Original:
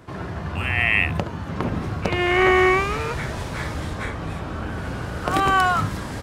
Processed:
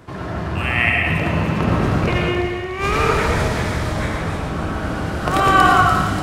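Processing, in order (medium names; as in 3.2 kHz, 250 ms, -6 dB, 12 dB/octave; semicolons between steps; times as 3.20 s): 0.89–3.48 s: compressor with a negative ratio -24 dBFS, ratio -0.5; feedback echo behind a high-pass 292 ms, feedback 55%, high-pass 3.2 kHz, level -6 dB; reverberation RT60 1.5 s, pre-delay 65 ms, DRR -1 dB; trim +2.5 dB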